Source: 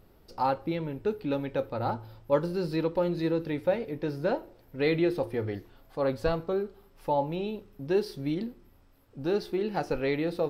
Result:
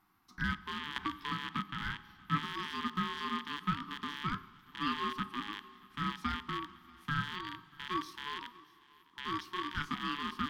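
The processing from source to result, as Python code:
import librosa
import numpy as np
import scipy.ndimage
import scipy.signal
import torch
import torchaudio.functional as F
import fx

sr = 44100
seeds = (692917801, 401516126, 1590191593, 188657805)

y = fx.rattle_buzz(x, sr, strikes_db=-38.0, level_db=-23.0)
y = fx.doubler(y, sr, ms=21.0, db=-6.0, at=(9.54, 9.94))
y = fx.rev_schroeder(y, sr, rt60_s=2.9, comb_ms=33, drr_db=17.5)
y = y * np.sin(2.0 * np.pi * 730.0 * np.arange(len(y)) / sr)
y = scipy.signal.sosfilt(scipy.signal.cheby1(2, 1.0, [270.0, 1200.0], 'bandstop', fs=sr, output='sos'), y)
y = y + 10.0 ** (-23.5 / 20.0) * np.pad(y, (int(635 * sr / 1000.0), 0))[:len(y)]
y = fx.band_squash(y, sr, depth_pct=100, at=(0.96, 1.59))
y = y * librosa.db_to_amplitude(-4.0)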